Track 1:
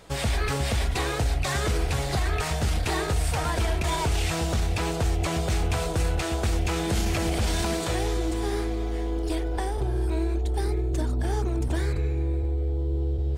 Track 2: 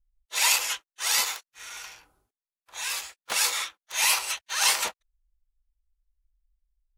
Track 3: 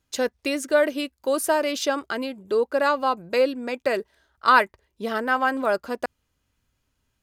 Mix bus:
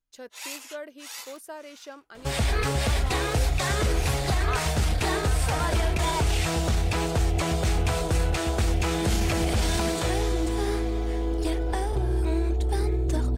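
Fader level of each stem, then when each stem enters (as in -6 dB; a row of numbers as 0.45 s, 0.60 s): +1.0 dB, -15.5 dB, -18.5 dB; 2.15 s, 0.00 s, 0.00 s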